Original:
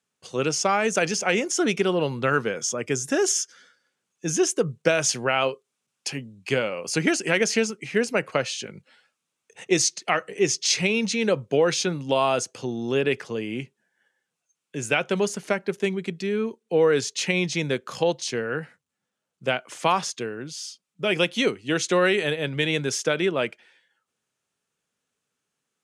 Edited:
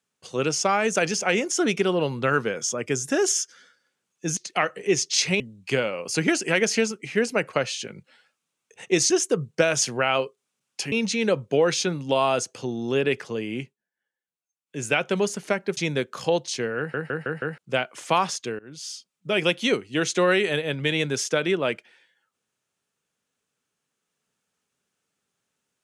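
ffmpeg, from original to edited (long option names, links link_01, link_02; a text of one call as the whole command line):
ffmpeg -i in.wav -filter_complex "[0:a]asplit=14[link_01][link_02][link_03][link_04][link_05][link_06][link_07][link_08][link_09][link_10][link_11][link_12][link_13][link_14];[link_01]atrim=end=4.372[link_15];[link_02]atrim=start=9.888:end=10.922[link_16];[link_03]atrim=start=6.188:end=9.892[link_17];[link_04]atrim=start=4.368:end=6.192[link_18];[link_05]atrim=start=10.918:end=13.76,asetpts=PTS-STARTPTS,afade=type=out:start_time=2.702:duration=0.14:silence=0.158489[link_19];[link_06]atrim=start=13.76:end=14.66,asetpts=PTS-STARTPTS,volume=-16dB[link_20];[link_07]atrim=start=14.66:end=15.772,asetpts=PTS-STARTPTS,afade=type=in:duration=0.14:silence=0.158489[link_21];[link_08]atrim=start=17.508:end=18.682[link_22];[link_09]atrim=start=18.518:end=18.682[link_23];[link_10]atrim=start=18.518:end=18.682[link_24];[link_11]atrim=start=18.518:end=18.682[link_25];[link_12]atrim=start=18.518:end=18.682[link_26];[link_13]atrim=start=19.318:end=20.33,asetpts=PTS-STARTPTS,afade=type=out:start_time=1.008:duration=0.004:curve=hsin:silence=0.0668344[link_27];[link_14]atrim=start=20.33,asetpts=PTS-STARTPTS,afade=type=in:duration=0.27:silence=0.0668344[link_28];[link_15][link_16]acrossfade=duration=0.004:curve1=hsin:curve2=hsin[link_29];[link_29][link_17]acrossfade=duration=0.004:curve1=hsin:curve2=hsin[link_30];[link_30][link_18]acrossfade=duration=0.004:curve1=hsin:curve2=hsin[link_31];[link_19][link_20][link_21]concat=n=3:v=0:a=1[link_32];[link_31][link_32]acrossfade=duration=0.004:curve1=hsin:curve2=hsin[link_33];[link_33][link_22]acrossfade=duration=0.004:curve1=hsin:curve2=hsin[link_34];[link_34][link_23]acrossfade=duration=0.004:curve1=hsin:curve2=hsin[link_35];[link_35][link_24]acrossfade=duration=0.004:curve1=hsin:curve2=hsin[link_36];[link_36][link_25]acrossfade=duration=0.004:curve1=hsin:curve2=hsin[link_37];[link_37][link_26]acrossfade=duration=0.004:curve1=hsin:curve2=hsin[link_38];[link_27][link_28]concat=n=2:v=0:a=1[link_39];[link_38][link_39]acrossfade=duration=0.004:curve1=hsin:curve2=hsin" out.wav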